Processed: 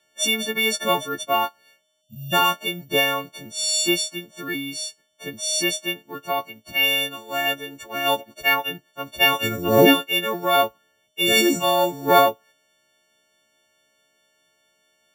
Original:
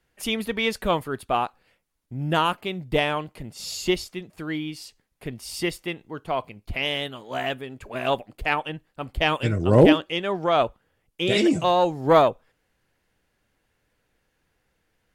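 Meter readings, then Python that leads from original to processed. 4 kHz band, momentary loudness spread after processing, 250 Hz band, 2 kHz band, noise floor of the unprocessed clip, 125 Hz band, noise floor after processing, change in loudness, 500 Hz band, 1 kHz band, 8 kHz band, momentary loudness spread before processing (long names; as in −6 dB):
+7.5 dB, 14 LU, −0.5 dB, +6.5 dB, −73 dBFS, −6.5 dB, −67 dBFS, +3.0 dB, 0.0 dB, +2.5 dB, +13.5 dB, 17 LU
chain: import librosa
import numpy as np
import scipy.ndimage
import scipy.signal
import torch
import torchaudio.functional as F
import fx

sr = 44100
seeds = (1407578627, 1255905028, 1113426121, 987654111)

y = fx.freq_snap(x, sr, grid_st=4)
y = fx.spec_box(y, sr, start_s=2.02, length_s=0.31, low_hz=240.0, high_hz=2500.0, gain_db=-28)
y = (np.kron(y[::3], np.eye(3)[0]) * 3)[:len(y)]
y = fx.bandpass_edges(y, sr, low_hz=170.0, high_hz=7000.0)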